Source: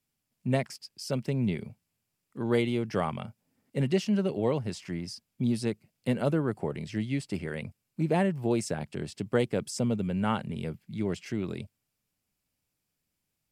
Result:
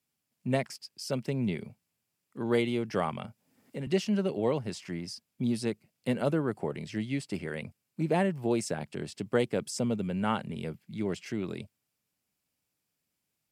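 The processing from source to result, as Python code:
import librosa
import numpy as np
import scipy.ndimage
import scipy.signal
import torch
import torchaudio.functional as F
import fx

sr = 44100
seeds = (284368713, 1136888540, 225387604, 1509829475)

y = fx.highpass(x, sr, hz=150.0, slope=6)
y = fx.band_squash(y, sr, depth_pct=70, at=(3.24, 3.87))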